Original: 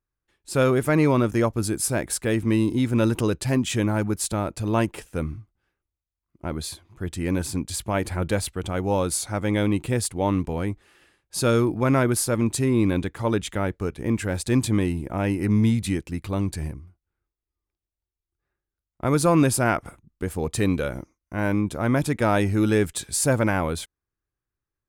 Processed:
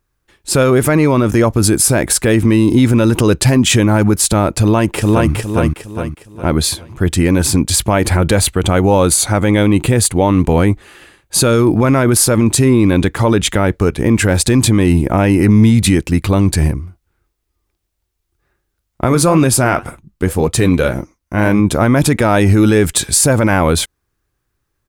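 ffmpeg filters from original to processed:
-filter_complex "[0:a]asplit=2[s0][s1];[s1]afade=t=in:st=4.61:d=0.01,afade=t=out:st=5.32:d=0.01,aecho=0:1:410|820|1230|1640|2050:0.707946|0.247781|0.0867234|0.0303532|0.0106236[s2];[s0][s2]amix=inputs=2:normalize=0,asettb=1/sr,asplit=3[s3][s4][s5];[s3]atrim=end=8.394[s6];[s4]atrim=start=8.39:end=11.53,asetpts=PTS-STARTPTS,afade=t=in:d=0.004:c=qsin,afade=t=out:st=3.136:d=0.004:c=qsin,bandreject=f=5300:w=9.4[s7];[s5]atrim=start=11.526[s8];[s6][s7]acrossfade=d=0.004:c1=hsin:c2=qsin[s9];[s9][s8]acrossfade=d=0.004:c1=qsin:c2=hsin,asplit=3[s10][s11][s12];[s10]afade=t=out:st=19.06:d=0.02[s13];[s11]flanger=delay=4.9:depth=6.8:regen=-63:speed=1.9:shape=sinusoidal,afade=t=in:st=19.06:d=0.02,afade=t=out:st=21.59:d=0.02[s14];[s12]afade=t=in:st=21.59:d=0.02[s15];[s13][s14][s15]amix=inputs=3:normalize=0,alimiter=level_in=7.94:limit=0.891:release=50:level=0:latency=1,volume=0.891"

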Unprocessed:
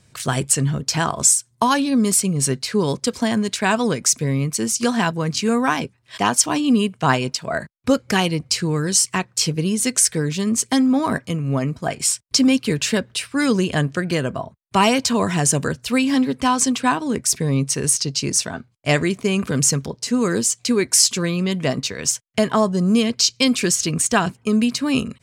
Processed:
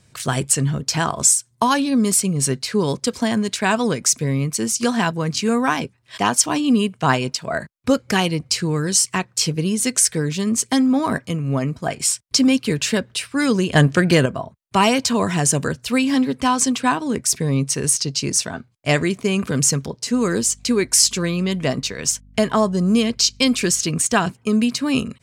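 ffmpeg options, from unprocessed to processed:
-filter_complex "[0:a]asettb=1/sr,asplit=3[s0][s1][s2];[s0]atrim=end=13.754[s3];[s1]atrim=start=13.75:end=14.26,asetpts=PTS-STARTPTS,afade=t=in:d=0.004:c=qsin,afade=t=out:st=0.506:d=0.004:c=qsin,acontrast=89[s4];[s2]atrim=start=14.256[s5];[s3][s4]acrossfade=d=0.004:c1=hsin:c2=qsin[s6];[s6][s5]acrossfade=d=0.004:c1=qsin:c2=hsin,asettb=1/sr,asplit=3[s7][s8][s9];[s7]atrim=end=20.134[s10];[s8]atrim=start=20.13:end=23.8,asetpts=PTS-STARTPTS,afade=t=in:d=0.004:c=qsin,afade=t=out:st=3.666:d=0.004:c=qsin,aeval=exprs='val(0)+0.00501*(sin(2*PI*50*n/s)+sin(2*PI*2*50*n/s)/2+sin(2*PI*3*50*n/s)/3+sin(2*PI*4*50*n/s)/4+sin(2*PI*5*50*n/s)/5)':c=same[s11];[s9]atrim=start=23.796[s12];[s10][s11]acrossfade=d=0.004:c1=hsin:c2=qsin[s13];[s13][s12]acrossfade=d=0.004:c1=qsin:c2=hsin"

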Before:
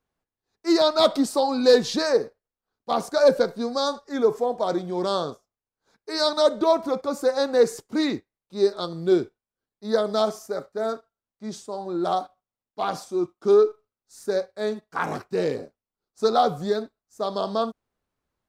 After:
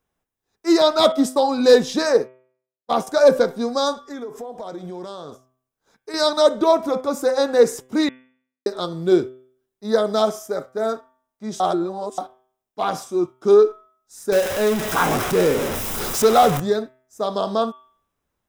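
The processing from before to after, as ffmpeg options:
-filter_complex "[0:a]asettb=1/sr,asplit=3[s0][s1][s2];[s0]atrim=end=1.124[s3];[s1]atrim=start=1.12:end=3.07,asetpts=PTS-STARTPTS,afade=t=in:d=0.004:c=qsin,afade=t=out:st=1.946:d=0.004:c=qsin,agate=range=0.0224:threshold=0.0447:ratio=3:release=100:detection=peak[s4];[s2]atrim=start=3.066[s5];[s3][s4]acrossfade=d=0.004:c1=hsin:c2=qsin[s6];[s6][s5]acrossfade=d=0.004:c1=qsin:c2=hsin,asettb=1/sr,asplit=3[s7][s8][s9];[s7]atrim=end=3.934[s10];[s8]atrim=start=3.93:end=6.14,asetpts=PTS-STARTPTS,afade=t=in:d=0.004:c=qsin,afade=t=out:st=2.206:d=0.004:c=qsin,acompressor=threshold=0.0224:ratio=8:attack=3.2:release=140:knee=1:detection=peak[s11];[s9]atrim=start=6.136[s12];[s10][s11]acrossfade=d=0.004:c1=hsin:c2=qsin[s13];[s13][s12]acrossfade=d=0.004:c1=qsin:c2=hsin,asettb=1/sr,asplit=3[s14][s15][s16];[s14]atrim=end=14.324[s17];[s15]atrim=start=14.32:end=16.6,asetpts=PTS-STARTPTS,afade=t=in:d=0.004:c=qsin,afade=t=out:st=2.276:d=0.004:c=qsin,aeval=exprs='val(0)+0.5*0.0708*sgn(val(0))':c=same[s18];[s16]atrim=start=16.596[s19];[s17][s18]acrossfade=d=0.004:c1=hsin:c2=qsin[s20];[s20][s19]acrossfade=d=0.004:c1=qsin:c2=hsin,asplit=5[s21][s22][s23][s24][s25];[s21]atrim=end=8.09,asetpts=PTS-STARTPTS,afade=t=out:st=8.086:d=0.004:c=hsin[s26];[s22]atrim=start=8.09:end=8.66,asetpts=PTS-STARTPTS,volume=0[s27];[s23]atrim=start=8.66:end=11.602,asetpts=PTS-STARTPTS,afade=t=in:d=0.004:c=hsin[s28];[s24]atrim=start=11.598:end=12.182,asetpts=PTS-STARTPTS,areverse[s29];[s25]atrim=start=12.178[s30];[s26][s27][s28]concat=n=3:v=0:a=1[s31];[s31][s29]acrossfade=d=0.004:c1=hsin:c2=hsin[s32];[s32][s30]acrossfade=d=0.004:c1=hsin:c2=hsin,highshelf=f=10000:g=5,bandreject=f=4400:w=6.8,bandreject=f=128.4:t=h:w=4,bandreject=f=256.8:t=h:w=4,bandreject=f=385.2:t=h:w=4,bandreject=f=513.6:t=h:w=4,bandreject=f=642:t=h:w=4,bandreject=f=770.4:t=h:w=4,bandreject=f=898.8:t=h:w=4,bandreject=f=1027.2:t=h:w=4,bandreject=f=1155.6:t=h:w=4,bandreject=f=1284:t=h:w=4,bandreject=f=1412.4:t=h:w=4,bandreject=f=1540.8:t=h:w=4,bandreject=f=1669.2:t=h:w=4,bandreject=f=1797.6:t=h:w=4,bandreject=f=1926:t=h:w=4,bandreject=f=2054.4:t=h:w=4,bandreject=f=2182.8:t=h:w=4,bandreject=f=2311.2:t=h:w=4,bandreject=f=2439.6:t=h:w=4,bandreject=f=2568:t=h:w=4,bandreject=f=2696.4:t=h:w=4,bandreject=f=2824.8:t=h:w=4,bandreject=f=2953.2:t=h:w=4,bandreject=f=3081.6:t=h:w=4,bandreject=f=3210:t=h:w=4,bandreject=f=3338.4:t=h:w=4,bandreject=f=3466.8:t=h:w=4,volume=1.58"

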